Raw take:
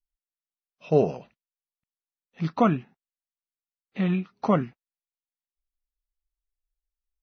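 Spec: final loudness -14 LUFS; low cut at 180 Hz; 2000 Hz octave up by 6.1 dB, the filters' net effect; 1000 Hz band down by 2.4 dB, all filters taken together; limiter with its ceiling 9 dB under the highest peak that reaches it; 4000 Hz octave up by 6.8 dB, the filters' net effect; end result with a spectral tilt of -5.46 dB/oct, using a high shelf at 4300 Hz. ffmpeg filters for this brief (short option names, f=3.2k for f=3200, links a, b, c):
-af "highpass=180,equalizer=f=1k:t=o:g=-6,equalizer=f=2k:t=o:g=7.5,equalizer=f=4k:t=o:g=4,highshelf=f=4.3k:g=4.5,volume=18dB,alimiter=limit=-0.5dB:level=0:latency=1"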